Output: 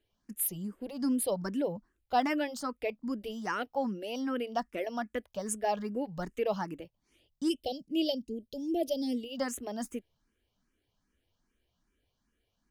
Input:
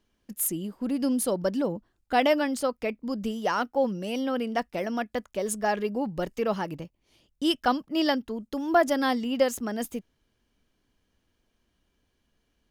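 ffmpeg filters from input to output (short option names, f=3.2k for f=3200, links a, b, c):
-filter_complex "[0:a]asplit=3[a][b][c];[a]afade=t=out:st=7.48:d=0.02[d];[b]asuperstop=centerf=1300:order=8:qfactor=0.63,afade=t=in:st=7.48:d=0.02,afade=t=out:st=9.36:d=0.02[e];[c]afade=t=in:st=9.36:d=0.02[f];[d][e][f]amix=inputs=3:normalize=0,asplit=2[g][h];[h]afreqshift=2.5[i];[g][i]amix=inputs=2:normalize=1,volume=-2.5dB"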